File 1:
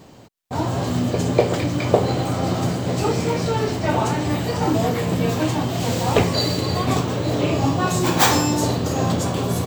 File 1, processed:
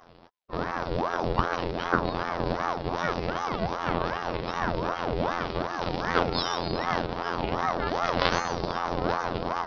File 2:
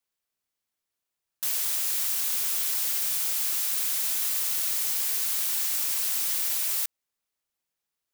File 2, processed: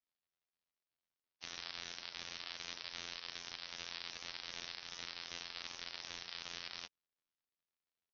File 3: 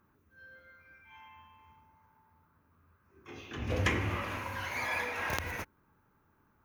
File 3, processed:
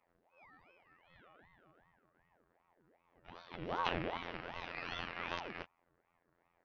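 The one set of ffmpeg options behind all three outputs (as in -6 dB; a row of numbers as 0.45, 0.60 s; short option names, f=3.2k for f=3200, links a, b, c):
-af "afftfilt=real='hypot(re,im)*cos(PI*b)':imag='0':win_size=2048:overlap=0.75,aresample=11025,aresample=44100,aeval=exprs='val(0)*sin(2*PI*630*n/s+630*0.65/2.6*sin(2*PI*2.6*n/s))':c=same,volume=-1.5dB"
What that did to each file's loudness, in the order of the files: -8.0, -21.0, -7.0 LU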